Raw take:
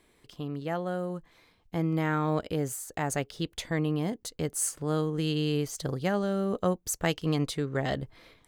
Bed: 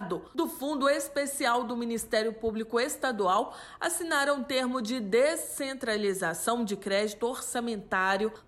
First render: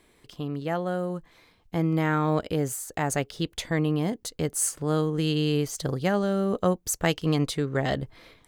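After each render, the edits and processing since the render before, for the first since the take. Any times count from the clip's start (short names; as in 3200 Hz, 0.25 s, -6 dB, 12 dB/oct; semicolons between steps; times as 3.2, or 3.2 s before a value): gain +3.5 dB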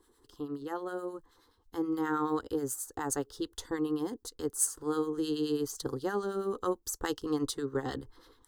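harmonic tremolo 9.4 Hz, depth 70%, crossover 1100 Hz; fixed phaser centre 630 Hz, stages 6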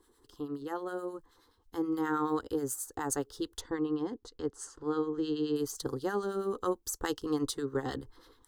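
3.61–5.56 air absorption 140 m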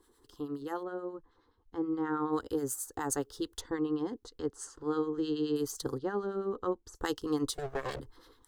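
0.83–2.33 tape spacing loss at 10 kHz 26 dB; 5.98–6.95 tape spacing loss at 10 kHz 23 dB; 7.54–8 minimum comb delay 1.8 ms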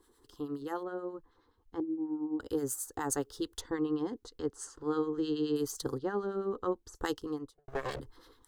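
1.8–2.4 vocal tract filter u; 7.01–7.68 studio fade out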